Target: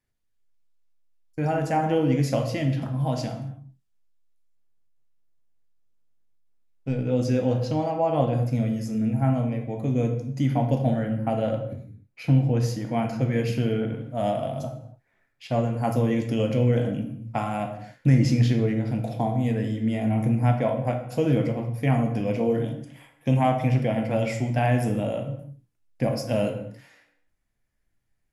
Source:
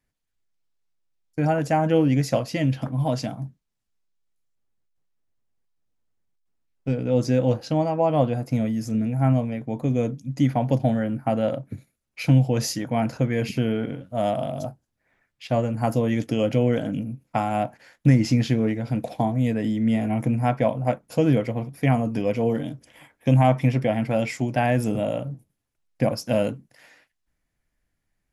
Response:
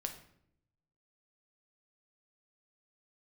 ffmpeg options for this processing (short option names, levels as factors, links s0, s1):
-filter_complex "[0:a]asettb=1/sr,asplit=3[s0][s1][s2];[s0]atrim=end=11.734[s3];[s1]atrim=start=11.73:end=12.89,asetpts=PTS-STARTPTS,afade=t=in:d=0.004:c=qsin,afade=t=out:st=1.156:d=0.004:c=qsin,highshelf=f=2600:g=-9.5[s4];[s2]atrim=start=12.886[s5];[s3][s4]acrossfade=d=0.004:c1=hsin:c2=qsin[s6];[s6][s5]acrossfade=d=0.004:c1=qsin:c2=hsin[s7];[1:a]atrim=start_sample=2205,afade=t=out:st=0.27:d=0.01,atrim=end_sample=12348,asetrate=32634,aresample=44100[s8];[s7][s8]afir=irnorm=-1:irlink=0,volume=0.708"